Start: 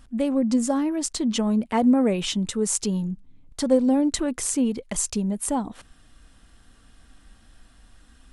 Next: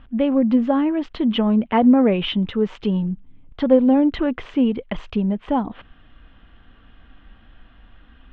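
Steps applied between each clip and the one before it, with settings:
elliptic low-pass filter 3,200 Hz, stop band 80 dB
level +5.5 dB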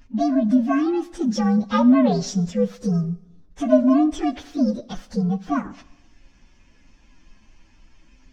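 partials spread apart or drawn together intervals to 125%
four-comb reverb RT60 0.93 s, combs from 31 ms, DRR 18 dB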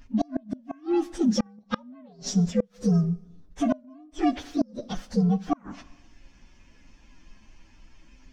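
gate with flip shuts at −12 dBFS, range −32 dB

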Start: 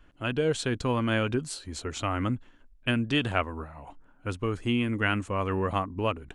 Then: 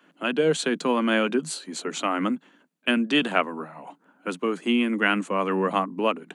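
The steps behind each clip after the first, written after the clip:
Butterworth high-pass 160 Hz 96 dB per octave
notch filter 5,300 Hz, Q 12
level +5 dB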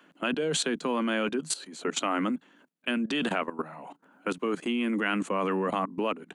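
output level in coarse steps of 16 dB
level +4.5 dB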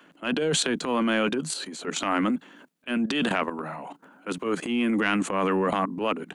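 transient designer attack −11 dB, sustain +5 dB
level +4.5 dB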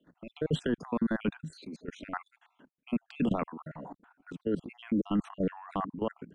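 time-frequency cells dropped at random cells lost 51%
output level in coarse steps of 14 dB
RIAA equalisation playback
level −4.5 dB

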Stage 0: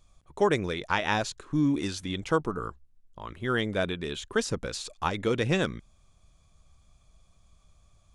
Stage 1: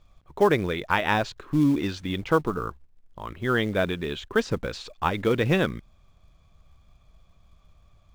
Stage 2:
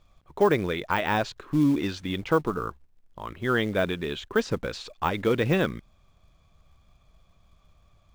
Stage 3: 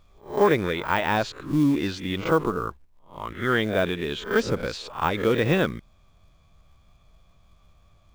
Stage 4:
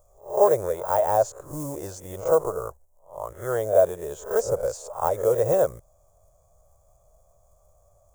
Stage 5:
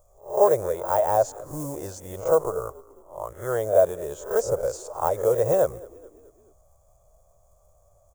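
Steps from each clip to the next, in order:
low-pass filter 3,500 Hz 12 dB per octave; in parallel at −5 dB: floating-point word with a short mantissa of 2 bits
de-essing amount 70%; low-shelf EQ 120 Hz −4 dB
peak hold with a rise ahead of every peak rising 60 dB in 0.34 s; level +1 dB
drawn EQ curve 120 Hz 0 dB, 250 Hz −17 dB, 580 Hz +15 dB, 2,400 Hz −19 dB, 4,000 Hz −16 dB, 6,900 Hz +14 dB; level −4.5 dB
echo with shifted repeats 215 ms, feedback 52%, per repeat −36 Hz, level −22 dB

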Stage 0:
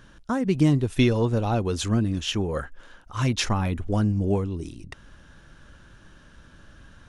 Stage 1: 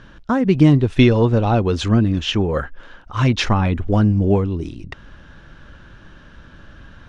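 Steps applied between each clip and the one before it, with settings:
low-pass filter 4,000 Hz 12 dB per octave
level +7.5 dB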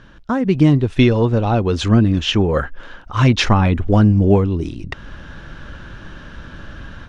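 automatic gain control gain up to 9 dB
level −1 dB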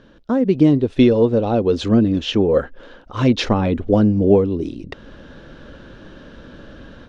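octave-band graphic EQ 250/500/4,000 Hz +8/+12/+6 dB
level −9 dB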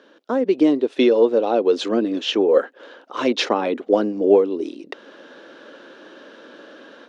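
high-pass filter 310 Hz 24 dB per octave
level +1 dB

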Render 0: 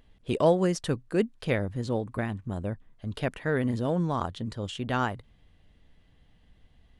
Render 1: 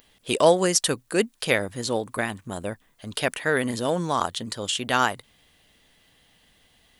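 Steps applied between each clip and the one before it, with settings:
RIAA equalisation recording
level +7 dB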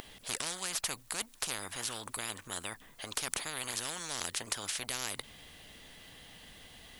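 every bin compressed towards the loudest bin 10 to 1
level −7 dB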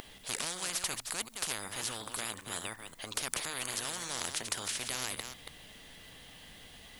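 delay that plays each chunk backwards 184 ms, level −7 dB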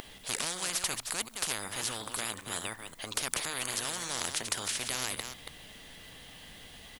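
far-end echo of a speakerphone 190 ms, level −25 dB
level +2.5 dB

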